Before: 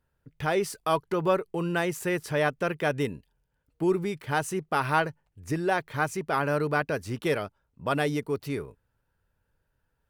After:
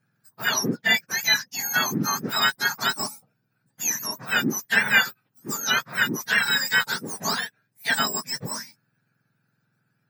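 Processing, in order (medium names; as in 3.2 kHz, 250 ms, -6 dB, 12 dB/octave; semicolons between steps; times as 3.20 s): spectrum inverted on a logarithmic axis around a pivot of 1.5 kHz; peaking EQ 1.7 kHz +9 dB 0.57 oct; trim +5 dB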